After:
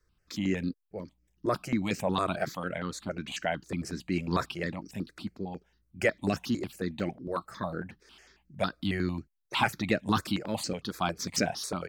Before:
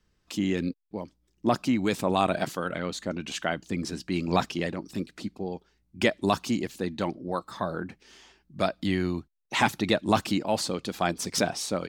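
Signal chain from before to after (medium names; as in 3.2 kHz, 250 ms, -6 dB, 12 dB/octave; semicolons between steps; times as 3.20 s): stepped phaser 11 Hz 800–3500 Hz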